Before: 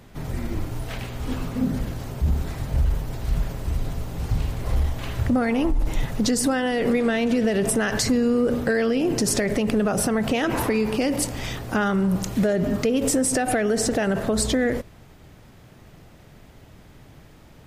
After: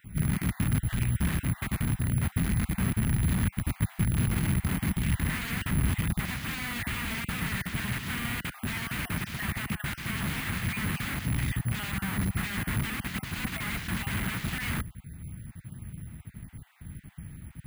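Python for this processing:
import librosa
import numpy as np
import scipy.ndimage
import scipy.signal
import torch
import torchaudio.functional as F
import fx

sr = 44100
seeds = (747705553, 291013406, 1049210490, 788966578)

y = fx.spec_dropout(x, sr, seeds[0], share_pct=22)
y = (np.mod(10.0 ** (24.5 / 20.0) * y + 1.0, 2.0) - 1.0) / 10.0 ** (24.5 / 20.0)
y = scipy.signal.sosfilt(scipy.signal.butter(2, 54.0, 'highpass', fs=sr, output='sos'), y)
y = fx.low_shelf(y, sr, hz=250.0, db=8.0)
y = (np.kron(scipy.signal.resample_poly(y, 1, 4), np.eye(4)[0]) * 4)[:len(y)]
y = fx.curve_eq(y, sr, hz=(190.0, 510.0, 2000.0, 7600.0), db=(0, -20, -3, -22))
y = y * 10.0 ** (3.0 / 20.0)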